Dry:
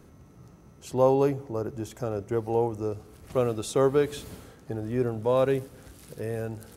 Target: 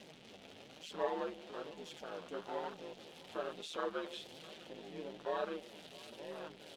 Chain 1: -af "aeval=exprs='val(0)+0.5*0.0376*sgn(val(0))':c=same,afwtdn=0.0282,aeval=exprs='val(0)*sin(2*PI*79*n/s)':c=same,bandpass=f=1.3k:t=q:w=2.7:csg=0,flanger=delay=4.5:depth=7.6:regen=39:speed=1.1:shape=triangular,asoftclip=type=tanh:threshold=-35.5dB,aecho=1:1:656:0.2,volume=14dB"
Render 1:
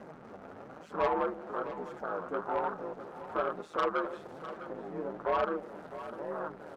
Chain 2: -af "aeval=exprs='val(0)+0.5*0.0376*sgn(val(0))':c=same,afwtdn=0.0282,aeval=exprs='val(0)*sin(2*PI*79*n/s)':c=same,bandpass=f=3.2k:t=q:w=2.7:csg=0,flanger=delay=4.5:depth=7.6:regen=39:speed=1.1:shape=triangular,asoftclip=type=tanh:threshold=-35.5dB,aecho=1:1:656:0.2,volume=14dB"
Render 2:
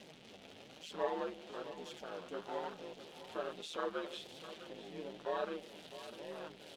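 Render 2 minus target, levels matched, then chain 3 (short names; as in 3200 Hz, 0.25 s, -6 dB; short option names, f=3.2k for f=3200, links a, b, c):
echo-to-direct +7.5 dB
-af "aeval=exprs='val(0)+0.5*0.0376*sgn(val(0))':c=same,afwtdn=0.0282,aeval=exprs='val(0)*sin(2*PI*79*n/s)':c=same,bandpass=f=3.2k:t=q:w=2.7:csg=0,flanger=delay=4.5:depth=7.6:regen=39:speed=1.1:shape=triangular,asoftclip=type=tanh:threshold=-35.5dB,aecho=1:1:656:0.0841,volume=14dB"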